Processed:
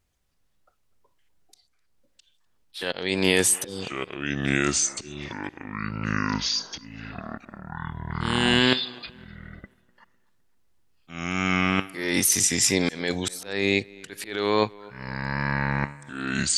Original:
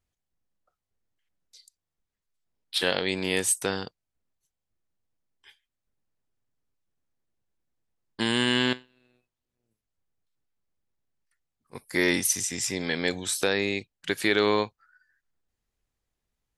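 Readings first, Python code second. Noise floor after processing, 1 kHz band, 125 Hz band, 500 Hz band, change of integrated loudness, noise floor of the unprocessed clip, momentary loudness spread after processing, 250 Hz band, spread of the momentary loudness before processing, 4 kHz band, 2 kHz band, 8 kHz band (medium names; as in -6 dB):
-67 dBFS, +6.0 dB, +10.0 dB, +1.5 dB, +1.5 dB, under -85 dBFS, 19 LU, +5.0 dB, 9 LU, +3.5 dB, +3.5 dB, +6.0 dB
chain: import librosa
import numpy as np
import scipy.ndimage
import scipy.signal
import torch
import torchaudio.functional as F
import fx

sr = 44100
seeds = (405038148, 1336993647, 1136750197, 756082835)

p1 = fx.spec_repair(x, sr, seeds[0], start_s=3.51, length_s=0.31, low_hz=560.0, high_hz=3000.0, source='both')
p2 = fx.over_compress(p1, sr, threshold_db=-27.0, ratio=-0.5)
p3 = p1 + (p2 * 10.0 ** (2.0 / 20.0))
p4 = fx.auto_swell(p3, sr, attack_ms=350.0)
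p5 = fx.echo_pitch(p4, sr, ms=144, semitones=-5, count=3, db_per_echo=-3.0)
p6 = p5 + fx.echo_tape(p5, sr, ms=252, feedback_pct=49, wet_db=-22.0, lp_hz=3300.0, drive_db=5.0, wow_cents=32, dry=0)
y = fx.wow_flutter(p6, sr, seeds[1], rate_hz=2.1, depth_cents=28.0)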